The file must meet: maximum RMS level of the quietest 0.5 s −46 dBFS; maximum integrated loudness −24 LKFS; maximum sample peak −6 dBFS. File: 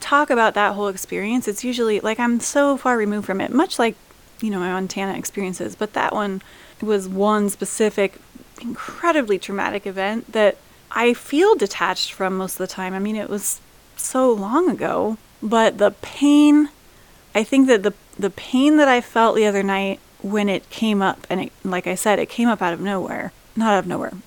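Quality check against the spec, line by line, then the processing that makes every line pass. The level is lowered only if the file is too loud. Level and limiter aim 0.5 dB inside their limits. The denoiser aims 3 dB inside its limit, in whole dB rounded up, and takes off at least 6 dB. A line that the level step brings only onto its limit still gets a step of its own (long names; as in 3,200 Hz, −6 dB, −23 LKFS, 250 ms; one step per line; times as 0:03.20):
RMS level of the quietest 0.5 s −49 dBFS: in spec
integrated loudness −20.0 LKFS: out of spec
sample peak −3.0 dBFS: out of spec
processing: level −4.5 dB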